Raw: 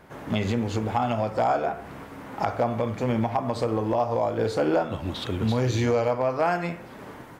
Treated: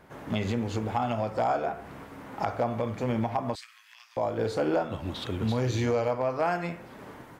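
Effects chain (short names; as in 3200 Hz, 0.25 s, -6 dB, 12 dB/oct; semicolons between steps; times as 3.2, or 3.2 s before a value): 3.55–4.17 steep high-pass 1700 Hz 36 dB/oct; gain -3.5 dB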